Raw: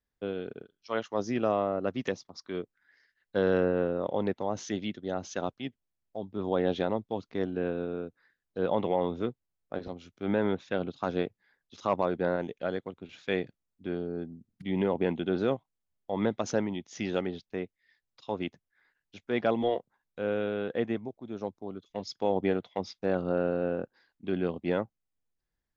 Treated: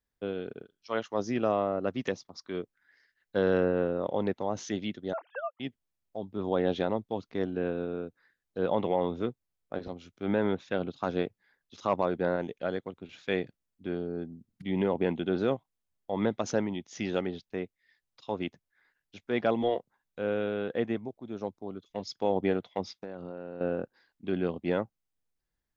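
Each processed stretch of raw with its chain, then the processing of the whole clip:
5.13–5.6 sine-wave speech + resonant high-pass 900 Hz, resonance Q 2 + air absorption 410 m
22.9–23.61 HPF 57 Hz + compressor 10:1, threshold -35 dBFS
whole clip: dry

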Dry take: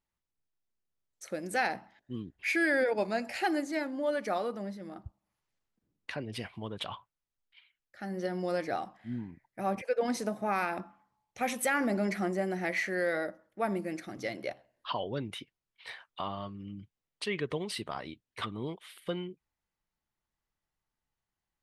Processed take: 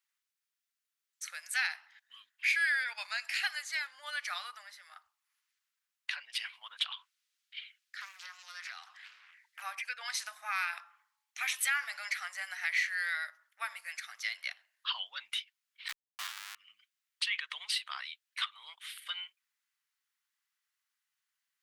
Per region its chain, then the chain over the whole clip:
6.92–9.62 bell 3900 Hz +9.5 dB 2.7 oct + compressor 5:1, threshold -42 dBFS + Doppler distortion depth 0.59 ms
15.88–16.55 tone controls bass +9 dB, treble -4 dB + Schmitt trigger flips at -38 dBFS + mismatched tape noise reduction decoder only
whole clip: inverse Chebyshev high-pass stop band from 390 Hz, stop band 60 dB; dynamic EQ 3500 Hz, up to +6 dB, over -52 dBFS, Q 1.1; compressor 1.5:1, threshold -44 dBFS; gain +6 dB

